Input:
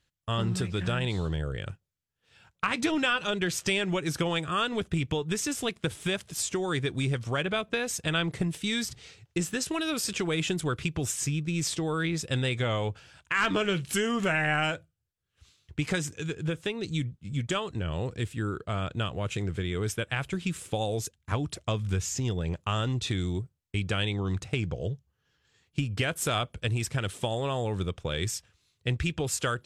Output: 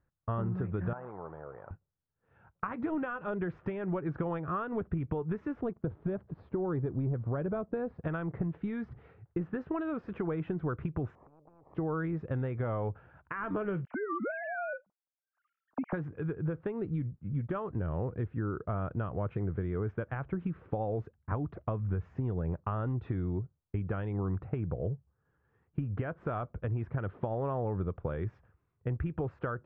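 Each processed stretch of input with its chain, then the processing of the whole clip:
0.93–1.71 s: one-bit delta coder 32 kbps, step -40.5 dBFS + band-pass filter 850 Hz, Q 1.9
5.61–8.03 s: four-pole ladder low-pass 4.8 kHz, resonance 70% + tilt shelf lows +9.5 dB, about 1.4 kHz + waveshaping leveller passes 1
11.15–11.75 s: inverse Chebyshev low-pass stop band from 1.4 kHz + compression 5:1, threshold -46 dBFS + spectrum-flattening compressor 10:1
13.85–15.93 s: formants replaced by sine waves + peaking EQ 400 Hz -10 dB 0.3 oct + compression 2:1, threshold -32 dBFS
whole clip: compression, threshold -30 dBFS; low-pass 1.4 kHz 24 dB/octave; trim +1 dB

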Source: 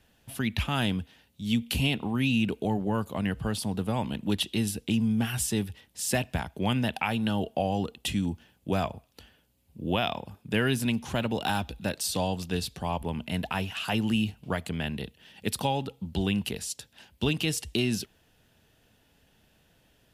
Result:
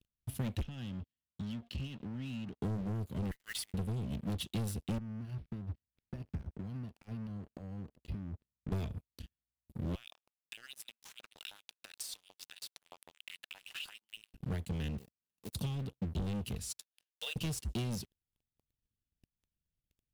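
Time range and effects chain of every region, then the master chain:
0.62–2.61 s: elliptic low-pass 5.4 kHz + compression 3:1, threshold -37 dBFS + comb of notches 1.2 kHz
3.31–3.74 s: resonant high-pass 2 kHz, resonance Q 13 + modulation noise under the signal 17 dB
4.98–8.72 s: compression 10:1, threshold -37 dBFS + tape spacing loss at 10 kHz 28 dB + decimation joined by straight lines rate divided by 6×
9.95–14.34 s: companding laws mixed up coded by A + compression 10:1, threshold -35 dBFS + LFO high-pass saw up 6.4 Hz 680–3800 Hz
14.98–15.55 s: median filter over 41 samples + RIAA curve recording + compression 2.5:1, threshold -42 dBFS
16.78–17.36 s: block-companded coder 7-bit + brick-wall FIR high-pass 460 Hz
whole clip: amplifier tone stack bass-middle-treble 10-0-1; waveshaping leveller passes 5; transient shaper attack +5 dB, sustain -5 dB; trim -3.5 dB

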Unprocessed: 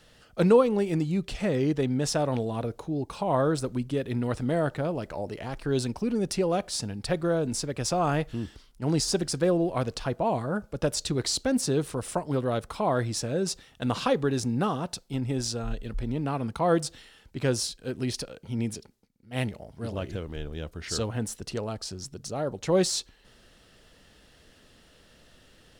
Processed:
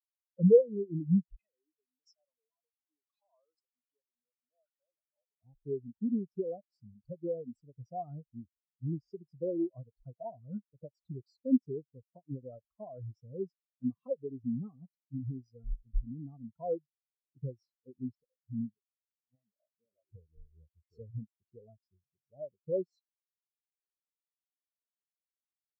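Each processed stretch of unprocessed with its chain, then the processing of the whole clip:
1.39–5.42 s: compression 2.5:1, threshold -35 dBFS + frequency weighting ITU-R 468
19.35–20.12 s: compression 4:1, threshold -42 dBFS + overdrive pedal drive 18 dB, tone 3.2 kHz, clips at -25.5 dBFS
whole clip: compression 4:1, threshold -27 dBFS; spectral contrast expander 4:1; trim +4 dB

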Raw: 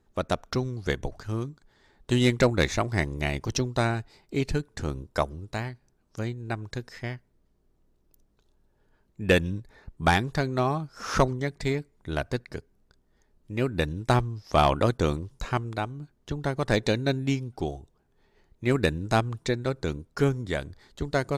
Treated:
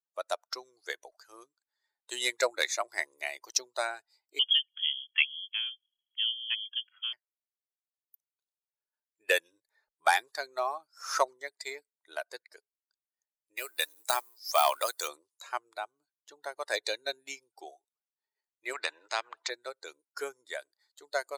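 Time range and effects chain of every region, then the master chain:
4.39–7.13 s: median filter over 15 samples + frequency inversion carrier 3.3 kHz
13.57–15.08 s: companding laws mixed up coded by mu + tilt EQ +2.5 dB/octave + de-esser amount 50%
18.73–19.50 s: low-pass 2.6 kHz + spectrum-flattening compressor 2:1
whole clip: expander on every frequency bin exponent 1.5; inverse Chebyshev high-pass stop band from 210 Hz, stop band 50 dB; treble shelf 7.3 kHz +12 dB

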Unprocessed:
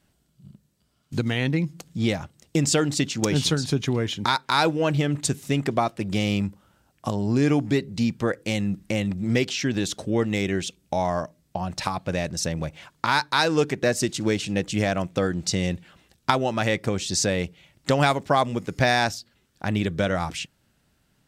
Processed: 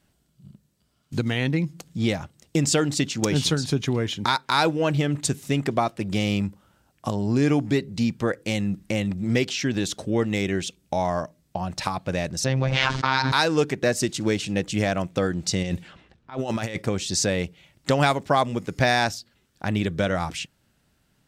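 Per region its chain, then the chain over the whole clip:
12.44–13.32 s: low-pass 5.7 kHz 24 dB/octave + robot voice 132 Hz + level flattener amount 100%
15.63–16.82 s: treble shelf 6.2 kHz +5.5 dB + compressor with a negative ratio -27 dBFS, ratio -0.5 + level-controlled noise filter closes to 1.6 kHz, open at -24 dBFS
whole clip: none

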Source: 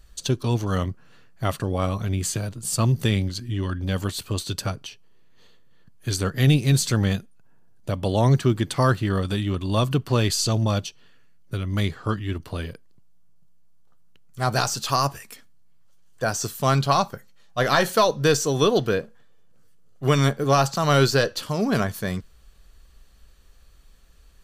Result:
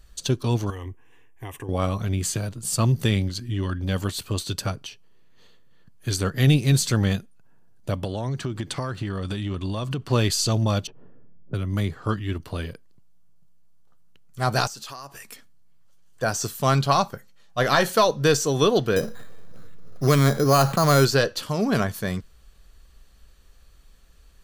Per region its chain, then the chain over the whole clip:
0.70–1.69 s: compression 5:1, threshold -25 dBFS + static phaser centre 900 Hz, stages 8
8.04–10.10 s: peaking EQ 13 kHz -11 dB 0.45 oct + compression 12:1, threshold -23 dBFS
10.87–12.02 s: level-controlled noise filter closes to 400 Hz, open at -24 dBFS + peaking EQ 3.7 kHz -5.5 dB 2.3 oct + three bands compressed up and down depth 40%
14.67–15.21 s: compression 8:1, threshold -34 dBFS + peaking EQ 77 Hz -12 dB 1.7 oct
18.96–21.05 s: band-stop 870 Hz, Q 10 + careless resampling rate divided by 8×, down filtered, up hold + level flattener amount 50%
whole clip: none

